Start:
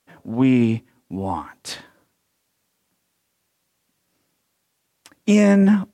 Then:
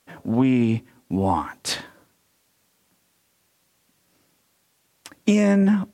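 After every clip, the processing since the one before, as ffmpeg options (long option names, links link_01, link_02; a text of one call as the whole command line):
ffmpeg -i in.wav -af "acompressor=threshold=-21dB:ratio=6,volume=5.5dB" out.wav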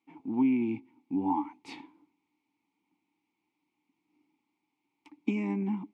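ffmpeg -i in.wav -filter_complex "[0:a]asplit=3[link_01][link_02][link_03];[link_01]bandpass=frequency=300:width_type=q:width=8,volume=0dB[link_04];[link_02]bandpass=frequency=870:width_type=q:width=8,volume=-6dB[link_05];[link_03]bandpass=frequency=2240:width_type=q:width=8,volume=-9dB[link_06];[link_04][link_05][link_06]amix=inputs=3:normalize=0,volume=1.5dB" out.wav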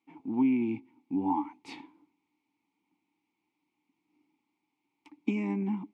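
ffmpeg -i in.wav -af anull out.wav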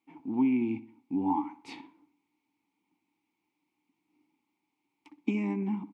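ffmpeg -i in.wav -filter_complex "[0:a]asplit=2[link_01][link_02];[link_02]adelay=63,lowpass=frequency=3100:poles=1,volume=-15.5dB,asplit=2[link_03][link_04];[link_04]adelay=63,lowpass=frequency=3100:poles=1,volume=0.44,asplit=2[link_05][link_06];[link_06]adelay=63,lowpass=frequency=3100:poles=1,volume=0.44,asplit=2[link_07][link_08];[link_08]adelay=63,lowpass=frequency=3100:poles=1,volume=0.44[link_09];[link_01][link_03][link_05][link_07][link_09]amix=inputs=5:normalize=0" out.wav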